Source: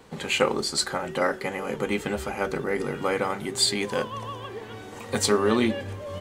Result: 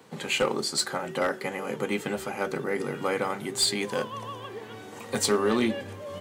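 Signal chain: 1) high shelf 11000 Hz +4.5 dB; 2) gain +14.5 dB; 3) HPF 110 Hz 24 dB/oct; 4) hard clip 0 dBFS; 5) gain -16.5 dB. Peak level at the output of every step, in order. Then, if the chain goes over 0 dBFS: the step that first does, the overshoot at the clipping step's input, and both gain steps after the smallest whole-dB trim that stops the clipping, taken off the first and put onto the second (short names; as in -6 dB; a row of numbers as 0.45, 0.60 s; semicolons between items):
-6.0, +8.5, +9.0, 0.0, -16.5 dBFS; step 2, 9.0 dB; step 2 +5.5 dB, step 5 -7.5 dB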